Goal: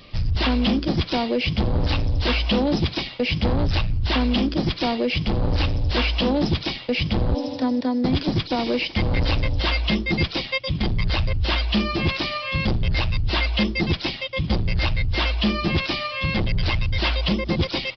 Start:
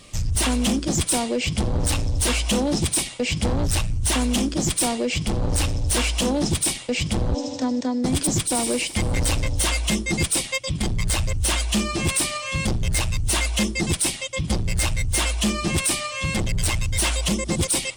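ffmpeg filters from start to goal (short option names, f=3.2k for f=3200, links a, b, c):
-af "aresample=11025,aresample=44100,volume=1.5dB"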